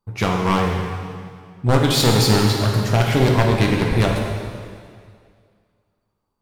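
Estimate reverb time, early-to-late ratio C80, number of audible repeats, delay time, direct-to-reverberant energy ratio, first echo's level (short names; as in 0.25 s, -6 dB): 2.1 s, 3.0 dB, none, none, -0.5 dB, none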